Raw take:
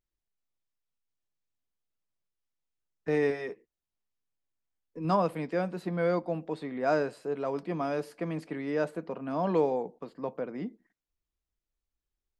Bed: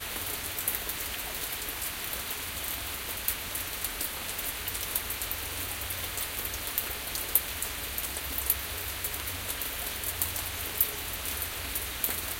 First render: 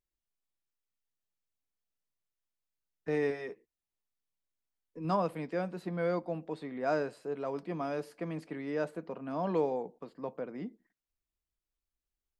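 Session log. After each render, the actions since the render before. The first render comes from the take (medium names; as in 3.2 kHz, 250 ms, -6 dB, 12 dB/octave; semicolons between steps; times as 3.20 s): trim -4 dB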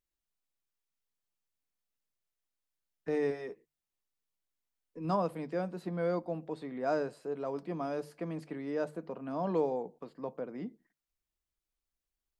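dynamic bell 2.3 kHz, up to -5 dB, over -53 dBFS, Q 0.94; hum notches 50/100/150 Hz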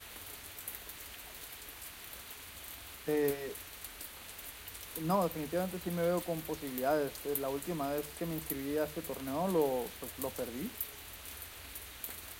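add bed -13 dB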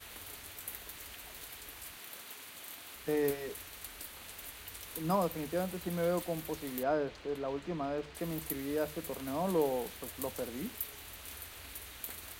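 1.97–2.96 s: high-pass 170 Hz; 6.83–8.15 s: distance through air 150 m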